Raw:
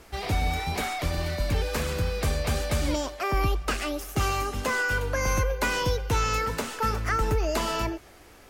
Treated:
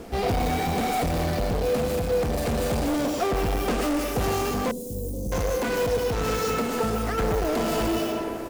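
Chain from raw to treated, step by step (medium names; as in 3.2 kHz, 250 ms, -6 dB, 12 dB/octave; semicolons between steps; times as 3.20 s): peaking EQ 230 Hz +12 dB 1.5 oct; delay 105 ms -11 dB; in parallel at -5.5 dB: decimation with a swept rate 15×, swing 100% 1.2 Hz; 6.35–7.18 s: on the sum: compression, threshold -25 dBFS, peak gain reduction 9.5 dB; on a send at -6 dB: RIAA curve recording + reverberation RT60 2.2 s, pre-delay 105 ms; on the sum: saturation -23.5 dBFS, distortion -7 dB; small resonant body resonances 490/700 Hz, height 9 dB, ringing for 45 ms; gain riding within 4 dB 0.5 s; 4.71–5.32 s: Chebyshev band-stop 270–9300 Hz, order 2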